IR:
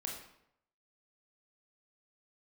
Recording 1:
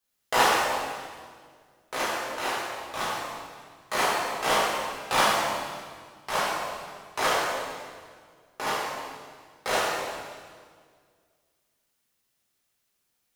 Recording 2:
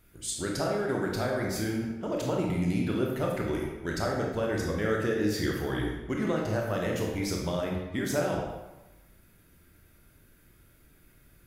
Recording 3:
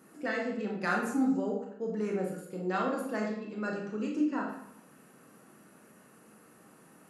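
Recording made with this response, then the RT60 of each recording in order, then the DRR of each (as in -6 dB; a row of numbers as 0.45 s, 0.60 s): 3; 1.8 s, 1.1 s, 0.75 s; -9.5 dB, -1.5 dB, -1.0 dB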